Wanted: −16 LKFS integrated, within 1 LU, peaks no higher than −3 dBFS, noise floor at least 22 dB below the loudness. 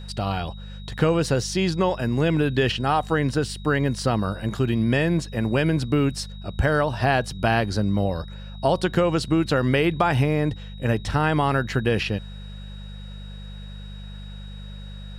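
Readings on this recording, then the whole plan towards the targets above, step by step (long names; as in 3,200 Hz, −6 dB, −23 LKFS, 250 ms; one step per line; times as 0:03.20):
mains hum 50 Hz; hum harmonics up to 200 Hz; level of the hum −35 dBFS; interfering tone 3,800 Hz; level of the tone −47 dBFS; integrated loudness −23.0 LKFS; sample peak −5.5 dBFS; target loudness −16.0 LKFS
→ hum removal 50 Hz, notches 4
notch filter 3,800 Hz, Q 30
level +7 dB
brickwall limiter −3 dBFS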